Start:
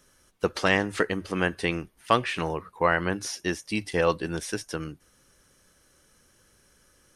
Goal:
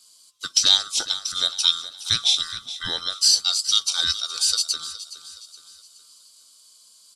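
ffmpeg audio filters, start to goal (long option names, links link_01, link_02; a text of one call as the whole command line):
ffmpeg -i in.wav -filter_complex "[0:a]afftfilt=real='real(if(lt(b,960),b+48*(1-2*mod(floor(b/48),2)),b),0)':imag='imag(if(lt(b,960),b+48*(1-2*mod(floor(b/48),2)),b),0)':win_size=2048:overlap=0.75,adynamicequalizer=threshold=0.00631:dfrequency=5200:dqfactor=0.88:tfrequency=5200:tqfactor=0.88:attack=5:release=100:ratio=0.375:range=3.5:mode=boostabove:tftype=bell,aexciter=amount=13.3:drive=7.4:freq=2900,lowpass=7800,asplit=2[link_01][link_02];[link_02]aecho=0:1:418|836|1254|1672:0.188|0.0829|0.0365|0.016[link_03];[link_01][link_03]amix=inputs=2:normalize=0,volume=-12dB" out.wav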